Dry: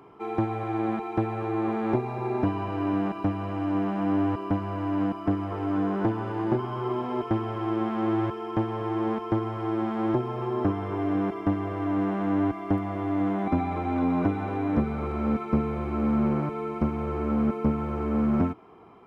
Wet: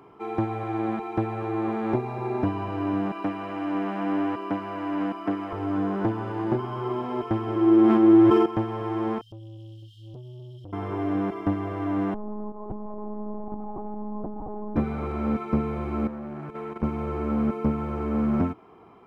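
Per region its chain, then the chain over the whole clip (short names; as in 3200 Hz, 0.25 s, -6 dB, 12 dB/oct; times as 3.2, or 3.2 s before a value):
3.12–5.53 HPF 220 Hz + bell 2100 Hz +4.5 dB 1.4 oct
7.47–8.46 bell 310 Hz +14.5 dB 0.48 oct + sustainer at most 22 dB/s
9.21–10.73 brick-wall FIR band-stop 170–2800 Hz + compressor 3:1, threshold -36 dBFS + core saturation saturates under 370 Hz
12.14–14.76 Chebyshev low-pass 1000 Hz, order 4 + compressor 4:1, threshold -30 dBFS + monotone LPC vocoder at 8 kHz 210 Hz
16.07–16.83 level quantiser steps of 11 dB + core saturation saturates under 490 Hz
whole clip: dry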